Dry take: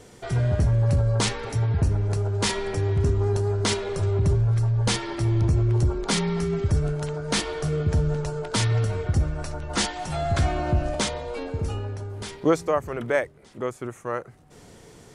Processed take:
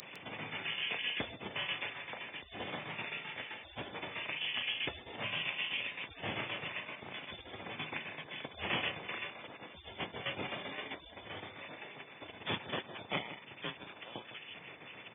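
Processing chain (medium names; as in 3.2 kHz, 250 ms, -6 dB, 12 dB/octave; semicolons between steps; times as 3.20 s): bass shelf 350 Hz -9 dB; doubling 36 ms -3.5 dB; tremolo saw down 7.7 Hz, depth 80%; in parallel at -8.5 dB: sine folder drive 10 dB, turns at -12 dBFS; on the sum: added noise brown -35 dBFS; frequency inversion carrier 3.3 kHz; high-pass 110 Hz 24 dB/octave; on a send: delay 156 ms -12 dB; on the sum: spectral gate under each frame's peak -25 dB weak; peaking EQ 1.4 kHz -9 dB 0.96 oct; trim +3.5 dB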